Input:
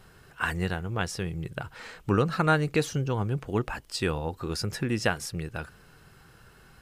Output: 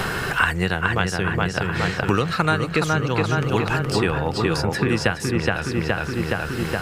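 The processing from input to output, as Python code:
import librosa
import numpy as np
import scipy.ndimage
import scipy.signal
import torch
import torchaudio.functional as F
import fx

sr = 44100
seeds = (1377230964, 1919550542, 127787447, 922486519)

y = fx.peak_eq(x, sr, hz=2400.0, db=4.5, octaves=2.7)
y = fx.echo_filtered(y, sr, ms=419, feedback_pct=56, hz=3100.0, wet_db=-3.0)
y = fx.band_squash(y, sr, depth_pct=100)
y = F.gain(torch.from_numpy(y), 3.5).numpy()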